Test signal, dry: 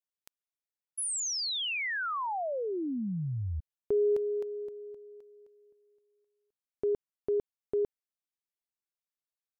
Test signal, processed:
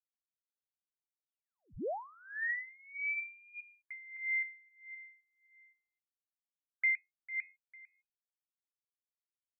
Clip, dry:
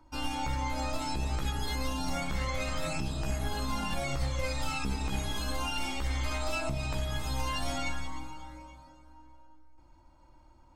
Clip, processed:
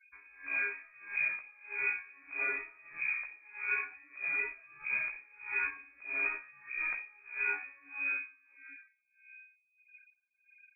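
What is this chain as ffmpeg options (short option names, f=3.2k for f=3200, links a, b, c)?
-af "bandreject=f=90.88:t=h:w=4,bandreject=f=181.76:t=h:w=4,bandreject=f=272.64:t=h:w=4,bandreject=f=363.52:t=h:w=4,bandreject=f=454.4:t=h:w=4,bandreject=f=545.28:t=h:w=4,bandreject=f=636.16:t=h:w=4,bandreject=f=727.04:t=h:w=4,bandreject=f=817.92:t=h:w=4,bandreject=f=908.8:t=h:w=4,bandreject=f=999.68:t=h:w=4,bandreject=f=1.09056k:t=h:w=4,bandreject=f=1.18144k:t=h:w=4,bandreject=f=1.27232k:t=h:w=4,bandreject=f=1.3632k:t=h:w=4,bandreject=f=1.45408k:t=h:w=4,afftfilt=real='re*gte(hypot(re,im),0.00355)':imag='im*gte(hypot(re,im),0.00355)':win_size=1024:overlap=0.75,lowpass=f=2.1k:t=q:w=0.5098,lowpass=f=2.1k:t=q:w=0.6013,lowpass=f=2.1k:t=q:w=0.9,lowpass=f=2.1k:t=q:w=2.563,afreqshift=-2500,aeval=exprs='val(0)*pow(10,-27*(0.5-0.5*cos(2*PI*1.6*n/s))/20)':c=same"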